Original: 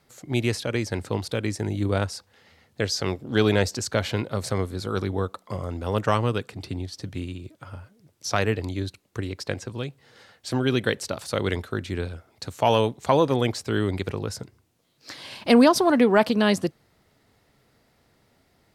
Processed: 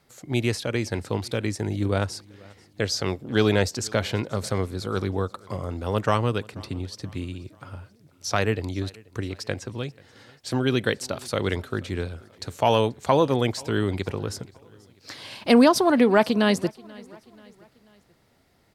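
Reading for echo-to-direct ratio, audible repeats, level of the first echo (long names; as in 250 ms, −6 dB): −23.0 dB, 2, −24.0 dB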